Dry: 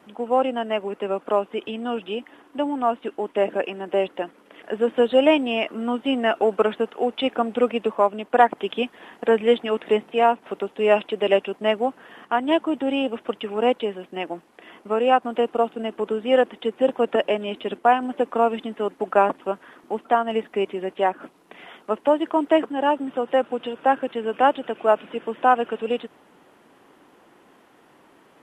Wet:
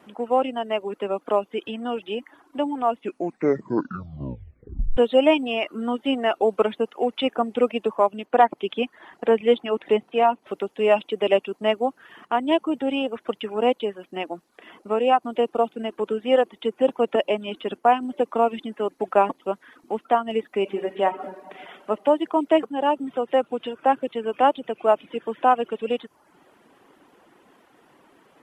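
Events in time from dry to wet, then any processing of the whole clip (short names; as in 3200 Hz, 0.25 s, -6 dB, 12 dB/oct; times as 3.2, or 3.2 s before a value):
2.92 tape stop 2.05 s
8.25–10.47 high shelf 6800 Hz -8 dB
20.57–21.9 reverb throw, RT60 1.5 s, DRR 5 dB
whole clip: reverb removal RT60 0.63 s; dynamic EQ 1600 Hz, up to -6 dB, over -43 dBFS, Q 3.4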